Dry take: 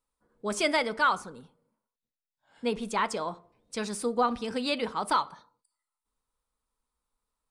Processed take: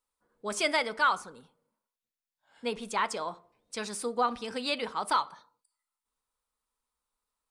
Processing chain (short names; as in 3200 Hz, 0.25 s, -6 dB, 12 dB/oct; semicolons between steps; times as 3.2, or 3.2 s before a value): low shelf 390 Hz -8.5 dB